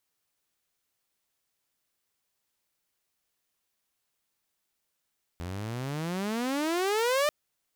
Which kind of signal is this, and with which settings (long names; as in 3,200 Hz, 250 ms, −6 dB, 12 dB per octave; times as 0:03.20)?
pitch glide with a swell saw, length 1.89 s, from 83.2 Hz, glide +34.5 semitones, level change +12 dB, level −20 dB